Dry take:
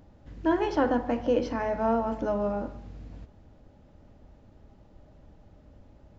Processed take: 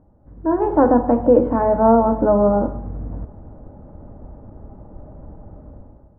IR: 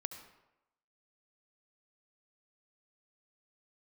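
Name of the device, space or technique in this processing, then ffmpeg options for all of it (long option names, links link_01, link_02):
action camera in a waterproof case: -af "lowpass=frequency=1200:width=0.5412,lowpass=frequency=1200:width=1.3066,dynaudnorm=framelen=240:gausssize=5:maxgain=15dB" -ar 48000 -c:a aac -b:a 64k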